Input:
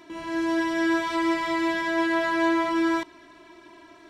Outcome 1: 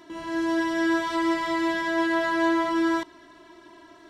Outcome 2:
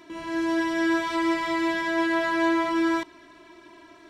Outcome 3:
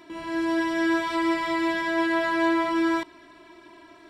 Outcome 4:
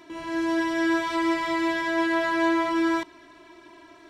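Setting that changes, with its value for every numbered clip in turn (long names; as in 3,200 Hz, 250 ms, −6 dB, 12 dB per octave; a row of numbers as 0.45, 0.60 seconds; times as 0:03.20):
notch filter, centre frequency: 2,400, 800, 6,300, 200 Hertz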